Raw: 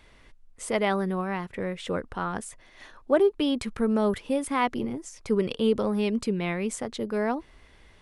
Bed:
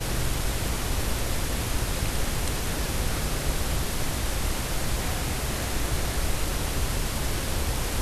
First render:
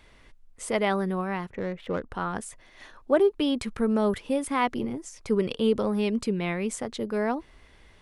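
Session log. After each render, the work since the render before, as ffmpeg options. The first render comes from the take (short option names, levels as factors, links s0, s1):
-filter_complex "[0:a]asplit=3[s0][s1][s2];[s0]afade=t=out:st=1.49:d=0.02[s3];[s1]adynamicsmooth=sensitivity=3.5:basefreq=1400,afade=t=in:st=1.49:d=0.02,afade=t=out:st=2.1:d=0.02[s4];[s2]afade=t=in:st=2.1:d=0.02[s5];[s3][s4][s5]amix=inputs=3:normalize=0"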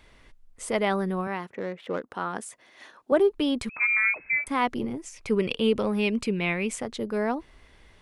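-filter_complex "[0:a]asettb=1/sr,asplit=3[s0][s1][s2];[s0]atrim=end=1.274[s3];[s1]atrim=start=1.27:end=3.12,asetpts=PTS-STARTPTS,afade=t=in:d=0.004:c=qsin,afade=t=out:st=1.846:d=0.004:c=qsin,highpass=220[s4];[s2]atrim=start=3.116[s5];[s3][s4]acrossfade=d=0.004:c1=hsin:c2=qsin[s6];[s6][s5]acrossfade=d=0.004:c1=qsin:c2=hsin,asettb=1/sr,asplit=3[s7][s8][s9];[s7]atrim=end=3.694[s10];[s8]atrim=start=3.69:end=4.47,asetpts=PTS-STARTPTS,afade=t=in:d=0.004:c=qsin,afade=t=out:st=0.776:d=0.004:c=qsin,lowpass=f=2200:t=q:w=0.5098,lowpass=f=2200:t=q:w=0.6013,lowpass=f=2200:t=q:w=0.9,lowpass=f=2200:t=q:w=2.563,afreqshift=-2600[s11];[s9]atrim=start=4.466[s12];[s10][s11]acrossfade=d=0.004:c1=hsin:c2=qsin[s13];[s13][s12]acrossfade=d=0.004:c1=qsin:c2=hsin,asettb=1/sr,asplit=3[s14][s15][s16];[s14]atrim=end=4.994[s17];[s15]atrim=start=4.99:end=6.81,asetpts=PTS-STARTPTS,afade=t=in:d=0.004:c=qsin,afade=t=out:st=1.816:d=0.004:c=qsin,equalizer=f=2500:t=o:w=0.6:g=9[s18];[s16]atrim=start=6.806[s19];[s17][s18]acrossfade=d=0.004:c1=hsin:c2=qsin[s20];[s20][s19]acrossfade=d=0.004:c1=qsin:c2=hsin"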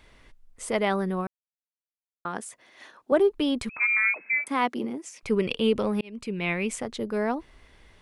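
-filter_complex "[0:a]asettb=1/sr,asplit=3[s0][s1][s2];[s0]atrim=end=3.784[s3];[s1]atrim=start=3.78:end=5.23,asetpts=PTS-STARTPTS,afade=t=in:d=0.004:c=qsin,afade=t=out:st=1.446:d=0.004:c=qsin,highpass=f=180:w=0.5412,highpass=f=180:w=1.3066[s4];[s2]atrim=start=5.226[s5];[s3][s4]acrossfade=d=0.004:c1=hsin:c2=qsin[s6];[s6][s5]acrossfade=d=0.004:c1=qsin:c2=hsin,asplit=4[s7][s8][s9][s10];[s7]atrim=end=1.27,asetpts=PTS-STARTPTS,afade=t=out:st=1.266:d=0.004:c=hsin[s11];[s8]atrim=start=1.27:end=2.25,asetpts=PTS-STARTPTS,volume=0[s12];[s9]atrim=start=2.25:end=6.01,asetpts=PTS-STARTPTS,afade=t=in:d=0.004:c=hsin,afade=t=out:st=3.756:d=0.004:c=hsin[s13];[s10]atrim=start=6.01,asetpts=PTS-STARTPTS,afade=t=in:d=0.52[s14];[s11][s12][s13][s14]concat=n=4:v=0:a=1"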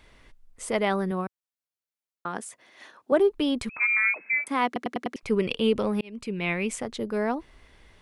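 -filter_complex "[0:a]asettb=1/sr,asplit=3[s0][s1][s2];[s0]atrim=end=1.114[s3];[s1]atrim=start=1.11:end=3.2,asetpts=PTS-STARTPTS,afade=t=in:d=0.004:c=qsin,afade=t=out:st=2.086:d=0.004:c=qsin,highpass=84[s4];[s2]atrim=start=3.196[s5];[s3][s4]acrossfade=d=0.004:c1=hsin:c2=qsin[s6];[s6][s5]acrossfade=d=0.004:c1=qsin:c2=hsin,asplit=6[s7][s8][s9][s10][s11][s12];[s7]atrim=end=4.762[s13];[s8]atrim=start=4.658:end=4.762[s14];[s9]atrim=start=4.658:end=4.762[s15];[s10]atrim=start=4.658:end=4.762[s16];[s11]atrim=start=4.658:end=4.762[s17];[s12]atrim=start=5.158[s18];[s13][s14]acrossfade=d=0.004:c1=hsin:c2=hsin[s19];[s19][s15]acrossfade=d=0.004:c1=hsin:c2=hsin[s20];[s20][s16]acrossfade=d=0.004:c1=hsin:c2=hsin[s21];[s21][s17]acrossfade=d=0.004:c1=hsin:c2=hsin[s22];[s22][s18]acrossfade=d=0.004:c1=hsin:c2=hsin"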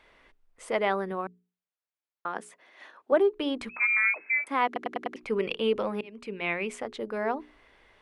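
-af "bass=f=250:g=-12,treble=f=4000:g=-11,bandreject=f=60:t=h:w=6,bandreject=f=120:t=h:w=6,bandreject=f=180:t=h:w=6,bandreject=f=240:t=h:w=6,bandreject=f=300:t=h:w=6,bandreject=f=360:t=h:w=6,bandreject=f=420:t=h:w=6"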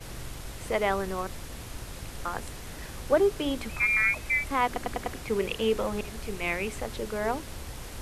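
-filter_complex "[1:a]volume=0.237[s0];[0:a][s0]amix=inputs=2:normalize=0"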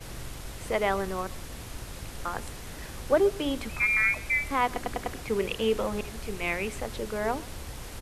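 -af "aecho=1:1:128:0.0841"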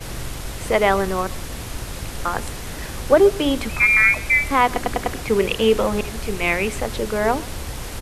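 -af "volume=2.99,alimiter=limit=0.708:level=0:latency=1"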